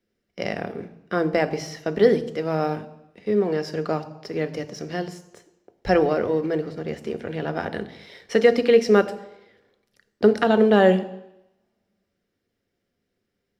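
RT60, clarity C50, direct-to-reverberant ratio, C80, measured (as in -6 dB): 0.85 s, 15.5 dB, 10.0 dB, 17.5 dB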